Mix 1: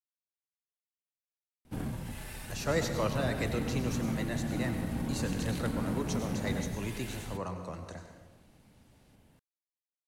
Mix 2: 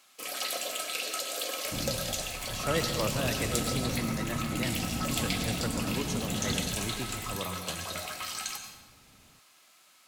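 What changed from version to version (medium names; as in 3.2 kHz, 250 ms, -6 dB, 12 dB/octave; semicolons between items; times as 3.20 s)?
first sound: unmuted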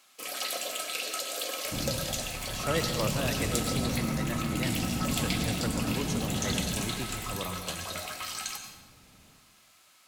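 second sound: send on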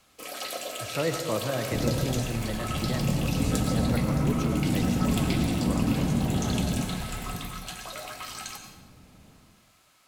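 speech: entry -1.70 s; second sound: send +6.5 dB; master: add tilt shelf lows +3.5 dB, about 1.3 kHz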